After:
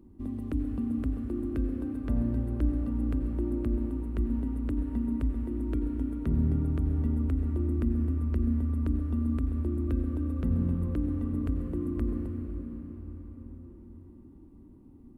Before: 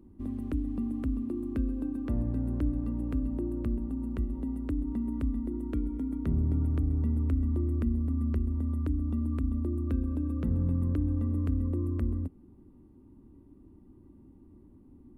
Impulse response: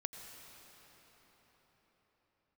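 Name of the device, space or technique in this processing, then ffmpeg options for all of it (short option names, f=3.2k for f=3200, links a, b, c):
cathedral: -filter_complex "[1:a]atrim=start_sample=2205[a];[0:a][a]afir=irnorm=-1:irlink=0,volume=3dB"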